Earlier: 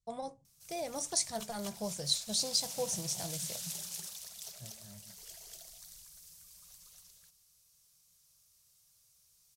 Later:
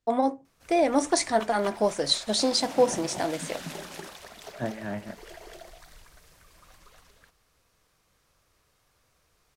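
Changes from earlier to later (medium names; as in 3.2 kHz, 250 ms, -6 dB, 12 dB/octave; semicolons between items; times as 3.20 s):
second voice +12.0 dB; background: add tilt EQ -3 dB/octave; master: remove FFT filter 180 Hz 0 dB, 260 Hz -23 dB, 510 Hz -15 dB, 1.8 kHz -19 dB, 5.8 kHz -2 dB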